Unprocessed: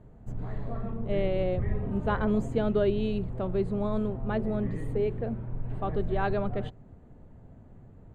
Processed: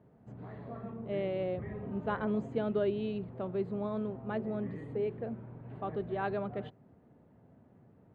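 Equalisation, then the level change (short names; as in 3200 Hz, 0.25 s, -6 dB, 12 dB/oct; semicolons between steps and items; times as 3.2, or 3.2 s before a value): HPF 150 Hz 12 dB/oct; LPF 3800 Hz 12 dB/oct; -5.0 dB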